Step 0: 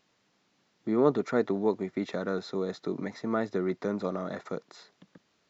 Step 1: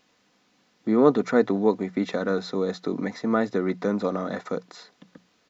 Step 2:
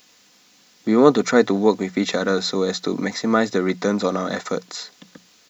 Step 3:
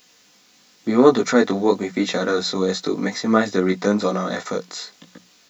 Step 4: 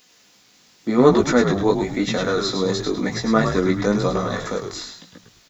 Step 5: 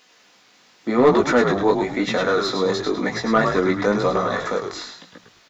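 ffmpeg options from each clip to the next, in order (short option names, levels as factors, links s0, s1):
-af "bandreject=f=60:t=h:w=6,bandreject=f=120:t=h:w=6,bandreject=f=180:t=h:w=6,aecho=1:1:4:0.33,volume=1.88"
-af "crystalizer=i=4.5:c=0,volume=1.58"
-af "flanger=delay=16:depth=5.9:speed=0.95,volume=1.41"
-filter_complex "[0:a]asplit=5[s0][s1][s2][s3][s4];[s1]adelay=105,afreqshift=-77,volume=0.501[s5];[s2]adelay=210,afreqshift=-154,volume=0.16[s6];[s3]adelay=315,afreqshift=-231,volume=0.0513[s7];[s4]adelay=420,afreqshift=-308,volume=0.0164[s8];[s0][s5][s6][s7][s8]amix=inputs=5:normalize=0,volume=0.891"
-filter_complex "[0:a]asplit=2[s0][s1];[s1]highpass=f=720:p=1,volume=5.62,asoftclip=type=tanh:threshold=0.841[s2];[s0][s2]amix=inputs=2:normalize=0,lowpass=f=1700:p=1,volume=0.501,volume=0.75"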